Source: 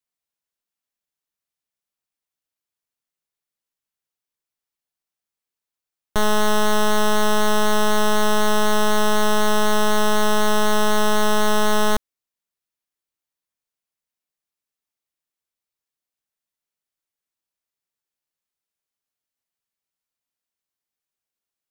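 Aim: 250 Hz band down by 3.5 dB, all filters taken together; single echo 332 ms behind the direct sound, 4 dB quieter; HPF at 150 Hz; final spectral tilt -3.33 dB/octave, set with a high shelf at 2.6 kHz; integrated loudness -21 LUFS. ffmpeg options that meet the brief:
-af "highpass=150,equalizer=f=250:t=o:g=-3,highshelf=f=2600:g=-5.5,aecho=1:1:332:0.631"

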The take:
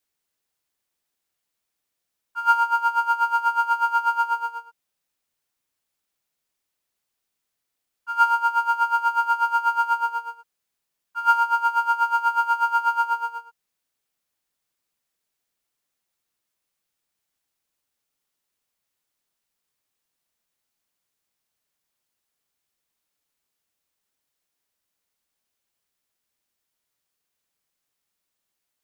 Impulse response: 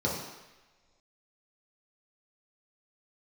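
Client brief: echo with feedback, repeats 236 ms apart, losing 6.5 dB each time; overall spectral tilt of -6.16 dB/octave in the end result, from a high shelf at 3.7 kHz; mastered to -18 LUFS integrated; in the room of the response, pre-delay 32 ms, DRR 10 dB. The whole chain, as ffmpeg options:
-filter_complex "[0:a]highshelf=f=3700:g=4.5,aecho=1:1:236|472|708|944|1180|1416:0.473|0.222|0.105|0.0491|0.0231|0.0109,asplit=2[s0][s1];[1:a]atrim=start_sample=2205,adelay=32[s2];[s1][s2]afir=irnorm=-1:irlink=0,volume=0.106[s3];[s0][s3]amix=inputs=2:normalize=0,volume=1.19"

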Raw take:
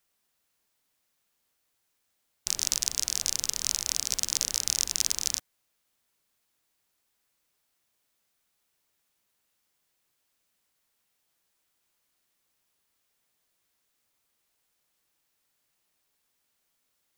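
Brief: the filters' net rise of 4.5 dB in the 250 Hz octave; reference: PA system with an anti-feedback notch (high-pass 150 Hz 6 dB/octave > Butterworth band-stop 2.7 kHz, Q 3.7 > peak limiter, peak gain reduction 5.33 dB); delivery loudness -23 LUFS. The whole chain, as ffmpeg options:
-af "highpass=f=150:p=1,asuperstop=centerf=2700:order=8:qfactor=3.7,equalizer=f=250:t=o:g=7.5,volume=2.11,alimiter=limit=0.841:level=0:latency=1"

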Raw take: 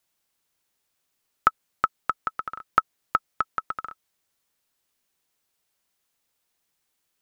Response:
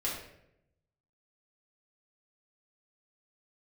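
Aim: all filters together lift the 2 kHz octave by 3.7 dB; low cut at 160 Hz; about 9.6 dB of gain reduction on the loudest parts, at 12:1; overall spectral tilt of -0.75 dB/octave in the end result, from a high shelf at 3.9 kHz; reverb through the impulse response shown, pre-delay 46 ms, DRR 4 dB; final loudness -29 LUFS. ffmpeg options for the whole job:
-filter_complex "[0:a]highpass=160,equalizer=f=2000:t=o:g=7.5,highshelf=f=3900:g=-8.5,acompressor=threshold=0.0631:ratio=12,asplit=2[s0][s1];[1:a]atrim=start_sample=2205,adelay=46[s2];[s1][s2]afir=irnorm=-1:irlink=0,volume=0.355[s3];[s0][s3]amix=inputs=2:normalize=0,volume=1.58"

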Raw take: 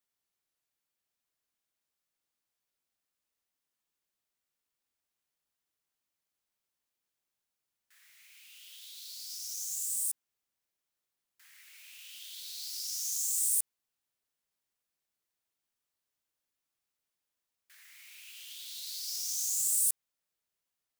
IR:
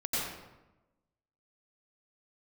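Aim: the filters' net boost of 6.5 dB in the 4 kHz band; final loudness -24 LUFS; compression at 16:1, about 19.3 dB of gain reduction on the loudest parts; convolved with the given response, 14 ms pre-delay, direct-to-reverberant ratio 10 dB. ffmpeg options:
-filter_complex "[0:a]equalizer=f=4000:t=o:g=8.5,acompressor=threshold=0.00708:ratio=16,asplit=2[s0][s1];[1:a]atrim=start_sample=2205,adelay=14[s2];[s1][s2]afir=irnorm=-1:irlink=0,volume=0.141[s3];[s0][s3]amix=inputs=2:normalize=0,volume=10.6"

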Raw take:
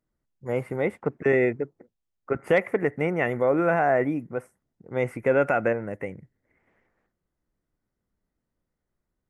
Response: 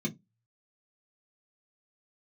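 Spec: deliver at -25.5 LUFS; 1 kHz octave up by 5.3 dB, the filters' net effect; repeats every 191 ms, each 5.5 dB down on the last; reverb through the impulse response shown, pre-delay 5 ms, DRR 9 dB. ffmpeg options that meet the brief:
-filter_complex "[0:a]equalizer=f=1000:t=o:g=8.5,aecho=1:1:191|382|573|764|955|1146|1337:0.531|0.281|0.149|0.079|0.0419|0.0222|0.0118,asplit=2[s0][s1];[1:a]atrim=start_sample=2205,adelay=5[s2];[s1][s2]afir=irnorm=-1:irlink=0,volume=0.251[s3];[s0][s3]amix=inputs=2:normalize=0,volume=0.562"

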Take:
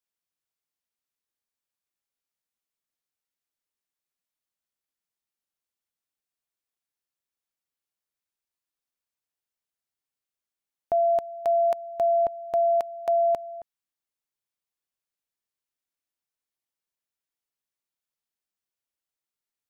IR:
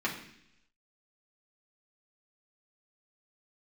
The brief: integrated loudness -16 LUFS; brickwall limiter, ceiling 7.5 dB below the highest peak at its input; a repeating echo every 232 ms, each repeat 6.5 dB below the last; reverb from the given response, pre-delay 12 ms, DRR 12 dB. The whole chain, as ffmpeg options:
-filter_complex "[0:a]alimiter=level_in=1.19:limit=0.0631:level=0:latency=1,volume=0.841,aecho=1:1:232|464|696|928|1160|1392:0.473|0.222|0.105|0.0491|0.0231|0.0109,asplit=2[s0][s1];[1:a]atrim=start_sample=2205,adelay=12[s2];[s1][s2]afir=irnorm=-1:irlink=0,volume=0.1[s3];[s0][s3]amix=inputs=2:normalize=0,volume=6.31"

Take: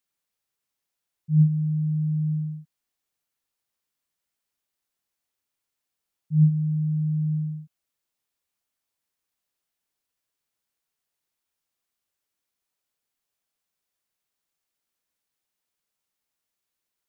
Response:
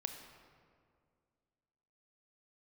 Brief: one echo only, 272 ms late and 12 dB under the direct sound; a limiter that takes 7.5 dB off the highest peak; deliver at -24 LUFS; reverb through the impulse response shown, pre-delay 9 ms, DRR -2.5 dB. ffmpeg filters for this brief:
-filter_complex "[0:a]alimiter=limit=0.126:level=0:latency=1,aecho=1:1:272:0.251,asplit=2[s0][s1];[1:a]atrim=start_sample=2205,adelay=9[s2];[s1][s2]afir=irnorm=-1:irlink=0,volume=1.5[s3];[s0][s3]amix=inputs=2:normalize=0,volume=0.75"

